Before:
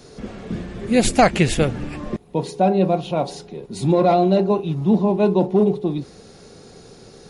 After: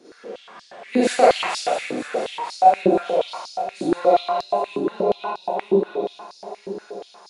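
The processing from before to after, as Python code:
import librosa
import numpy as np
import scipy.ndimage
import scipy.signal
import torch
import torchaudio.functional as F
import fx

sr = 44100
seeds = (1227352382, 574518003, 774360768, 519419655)

p1 = fx.reverse_delay_fb(x, sr, ms=463, feedback_pct=60, wet_db=-10.5)
p2 = fx.high_shelf(p1, sr, hz=9000.0, db=-9.5)
p3 = p2 + fx.echo_feedback(p2, sr, ms=125, feedback_pct=50, wet_db=-8, dry=0)
p4 = fx.rev_schroeder(p3, sr, rt60_s=0.5, comb_ms=32, drr_db=-5.5)
p5 = fx.filter_held_highpass(p4, sr, hz=8.4, low_hz=320.0, high_hz=4800.0)
y = p5 * 10.0 ** (-10.5 / 20.0)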